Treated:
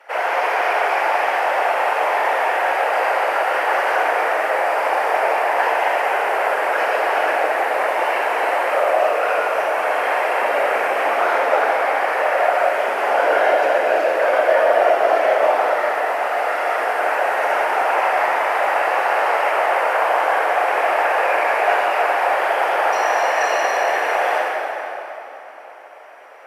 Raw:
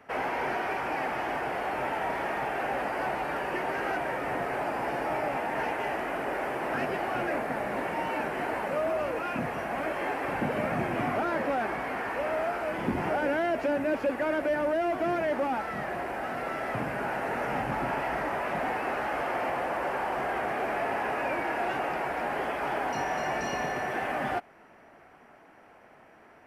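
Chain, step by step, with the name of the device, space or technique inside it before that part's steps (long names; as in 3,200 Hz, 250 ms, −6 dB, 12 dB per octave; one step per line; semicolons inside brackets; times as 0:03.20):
whispering ghost (random phases in short frames; high-pass filter 510 Hz 24 dB per octave; convolution reverb RT60 3.3 s, pre-delay 25 ms, DRR −3.5 dB)
level +8.5 dB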